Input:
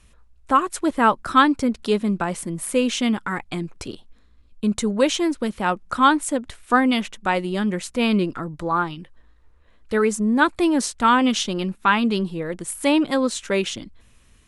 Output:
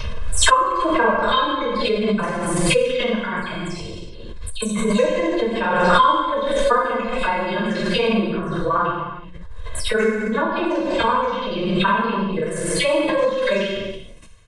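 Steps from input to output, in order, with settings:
every frequency bin delayed by itself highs early, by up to 164 ms
treble cut that deepens with the level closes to 870 Hz, closed at −13 dBFS
comb filter 1.9 ms, depth 93%
amplitude modulation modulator 21 Hz, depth 100%
reverb whose tail is shaped and stops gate 440 ms falling, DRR −6 dB
downsampling to 22,050 Hz
background raised ahead of every attack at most 27 dB per second
level −2 dB

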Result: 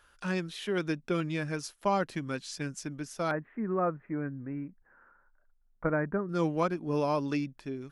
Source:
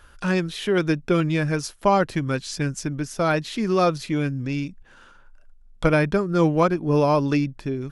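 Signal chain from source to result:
dynamic equaliser 210 Hz, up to +7 dB, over −34 dBFS, Q 1.1
0:03.31–0:06.29: Butterworth low-pass 1,900 Hz 48 dB per octave
low-shelf EQ 300 Hz −10.5 dB
level −8.5 dB

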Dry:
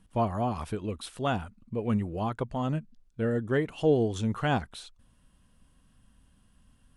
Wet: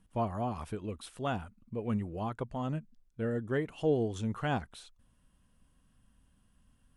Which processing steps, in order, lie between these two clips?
parametric band 4,100 Hz −2.5 dB
level −5 dB

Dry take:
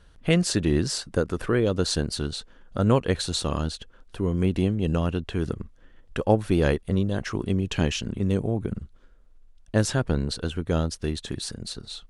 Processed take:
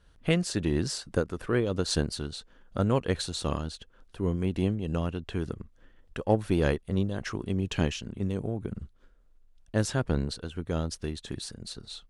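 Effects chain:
harmonic generator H 7 −36 dB, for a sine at −6 dBFS
amplitude modulation by smooth noise, depth 65%

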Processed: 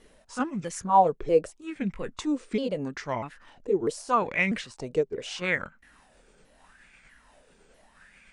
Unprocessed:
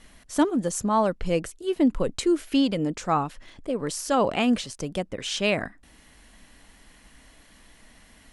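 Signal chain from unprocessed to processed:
pitch shifter swept by a sawtooth −4.5 semitones, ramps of 645 ms
auto-filter bell 0.79 Hz 410–2,300 Hz +17 dB
level −7.5 dB

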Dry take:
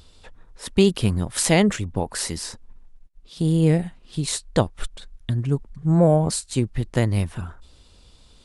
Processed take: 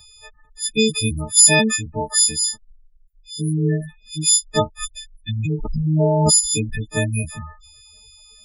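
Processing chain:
every partial snapped to a pitch grid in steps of 6 semitones
gate on every frequency bin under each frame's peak −15 dB strong
0:05.39–0:06.86: background raised ahead of every attack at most 24 dB per second
level −1.5 dB

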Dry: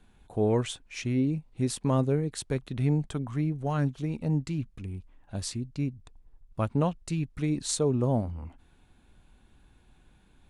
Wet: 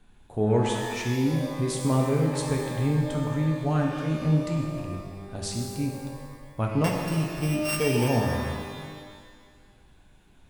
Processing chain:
0:06.84–0:08.08: samples sorted by size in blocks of 16 samples
reverb with rising layers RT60 1.7 s, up +12 semitones, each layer −8 dB, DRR 0 dB

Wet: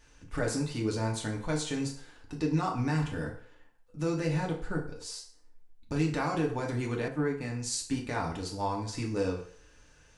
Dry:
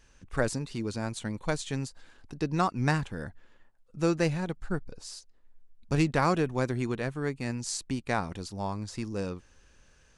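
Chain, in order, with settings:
brickwall limiter −22 dBFS, peak gain reduction 11.5 dB
feedback delay network reverb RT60 0.55 s, low-frequency decay 0.7×, high-frequency decay 0.8×, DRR −1.5 dB
0:07.08–0:08.07: multiband upward and downward expander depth 40%
level −1 dB

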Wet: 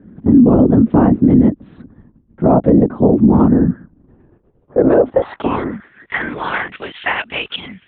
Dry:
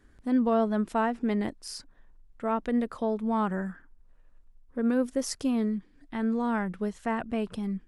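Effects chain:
0:02.46–0:02.89: parametric band 610 Hz +14 dB 0.82 octaves
linear-prediction vocoder at 8 kHz whisper
band-pass filter sweep 240 Hz → 2,900 Hz, 0:03.87–0:06.58
boost into a limiter +29 dB
level −1 dB

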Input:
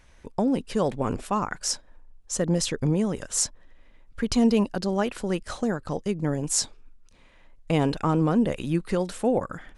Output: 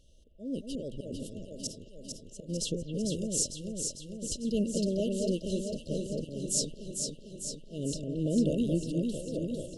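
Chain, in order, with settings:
volume swells 280 ms
brick-wall band-stop 660–2,700 Hz
delay that swaps between a low-pass and a high-pass 225 ms, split 2,400 Hz, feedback 80%, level −3 dB
level −5 dB

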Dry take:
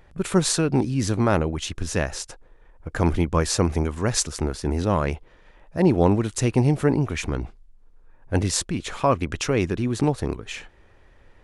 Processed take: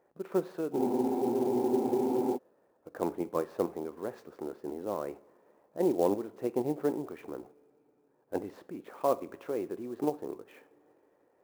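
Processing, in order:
in parallel at −1 dB: output level in coarse steps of 19 dB
on the sum: four-pole ladder band-pass 540 Hz, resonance 20%
coupled-rooms reverb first 0.48 s, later 4.5 s, from −22 dB, DRR 13 dB
frozen spectrum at 0:00.80, 1.56 s
converter with an unsteady clock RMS 0.02 ms

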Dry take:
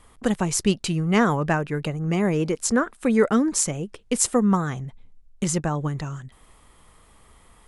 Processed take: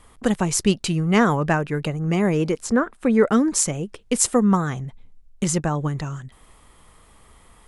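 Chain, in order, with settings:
0:02.61–0:03.27: high-shelf EQ 2,700 Hz → 3,800 Hz −10 dB
level +2 dB

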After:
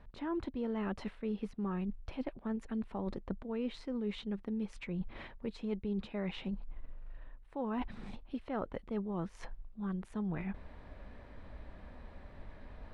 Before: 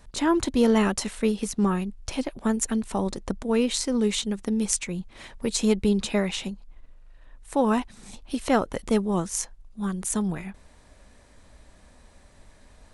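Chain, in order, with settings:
reversed playback
downward compressor 5 to 1, threshold −39 dBFS, peak gain reduction 20.5 dB
reversed playback
high-frequency loss of the air 400 metres
level +3.5 dB

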